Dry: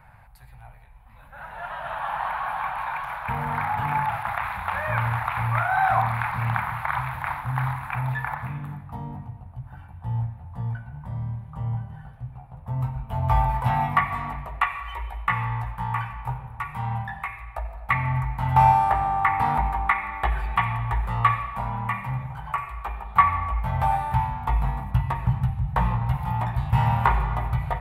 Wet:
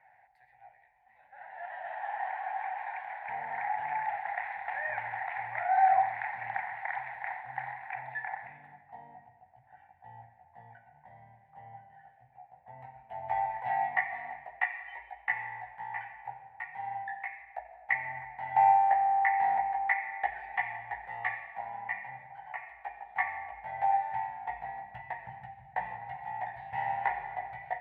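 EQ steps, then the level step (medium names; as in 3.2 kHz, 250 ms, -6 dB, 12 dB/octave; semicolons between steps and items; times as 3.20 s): two resonant band-passes 1.2 kHz, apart 1.3 oct; 0.0 dB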